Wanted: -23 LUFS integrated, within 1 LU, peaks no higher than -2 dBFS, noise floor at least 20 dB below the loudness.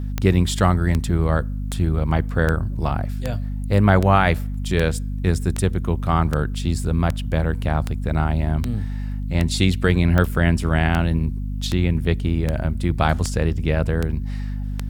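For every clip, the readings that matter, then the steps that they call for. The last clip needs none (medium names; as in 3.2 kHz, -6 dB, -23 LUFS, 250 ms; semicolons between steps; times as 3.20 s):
clicks found 20; hum 50 Hz; highest harmonic 250 Hz; hum level -23 dBFS; loudness -21.5 LUFS; peak level -2.5 dBFS; loudness target -23.0 LUFS
-> de-click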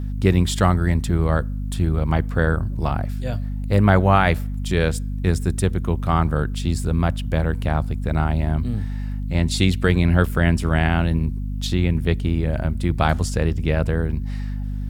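clicks found 0; hum 50 Hz; highest harmonic 250 Hz; hum level -23 dBFS
-> de-hum 50 Hz, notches 5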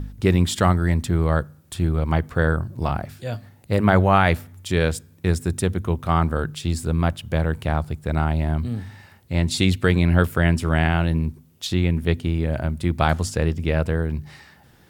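hum not found; loudness -22.0 LUFS; peak level -2.5 dBFS; loudness target -23.0 LUFS
-> trim -1 dB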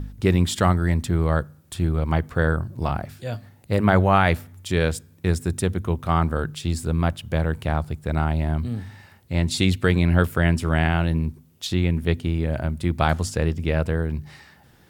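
loudness -23.0 LUFS; peak level -3.5 dBFS; noise floor -54 dBFS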